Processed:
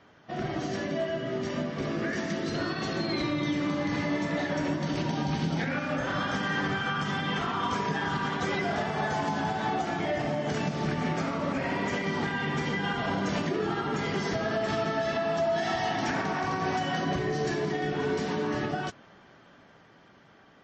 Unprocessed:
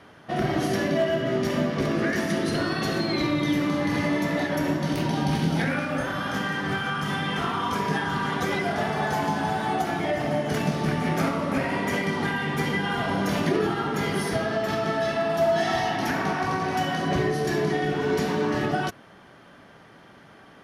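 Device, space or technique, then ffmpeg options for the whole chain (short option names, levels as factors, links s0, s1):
low-bitrate web radio: -af "dynaudnorm=f=660:g=11:m=4.22,alimiter=limit=0.237:level=0:latency=1:release=277,volume=0.447" -ar 24000 -c:a libmp3lame -b:a 32k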